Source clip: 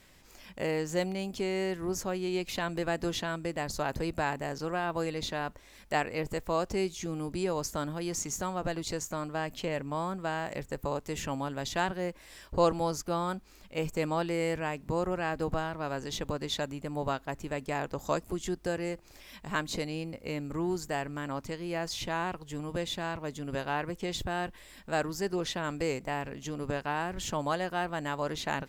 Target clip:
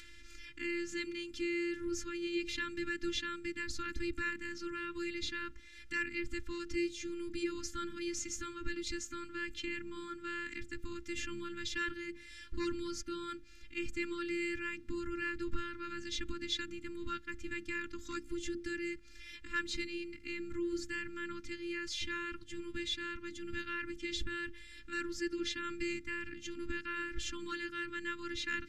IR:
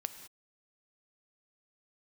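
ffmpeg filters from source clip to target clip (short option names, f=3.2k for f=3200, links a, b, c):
-af "lowpass=11k,aemphasis=mode=reproduction:type=50fm,bandreject=f=60:t=h:w=6,bandreject=f=120:t=h:w=6,bandreject=f=180:t=h:w=6,bandreject=f=240:t=h:w=6,bandreject=f=300:t=h:w=6,bandreject=f=360:t=h:w=6,bandreject=f=420:t=h:w=6,adynamicequalizer=threshold=0.00282:dfrequency=190:dqfactor=3.4:tfrequency=190:tqfactor=3.4:attack=5:release=100:ratio=0.375:range=2:mode=cutabove:tftype=bell,acompressor=mode=upward:threshold=-47dB:ratio=2.5,afftfilt=real='hypot(re,im)*cos(PI*b)':imag='0':win_size=512:overlap=0.75,asoftclip=type=tanh:threshold=-19dB,asuperstop=centerf=660:order=8:qfactor=0.59,volume=5.5dB"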